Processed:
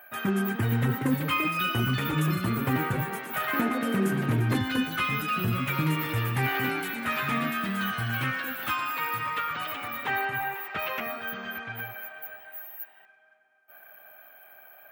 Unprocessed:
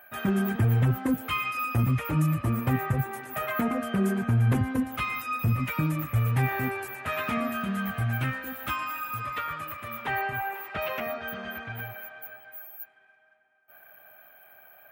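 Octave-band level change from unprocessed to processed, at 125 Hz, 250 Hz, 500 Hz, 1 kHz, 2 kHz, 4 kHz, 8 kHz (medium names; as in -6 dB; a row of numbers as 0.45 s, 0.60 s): -3.0 dB, 0.0 dB, 0.0 dB, +1.5 dB, +3.5 dB, +7.0 dB, +2.5 dB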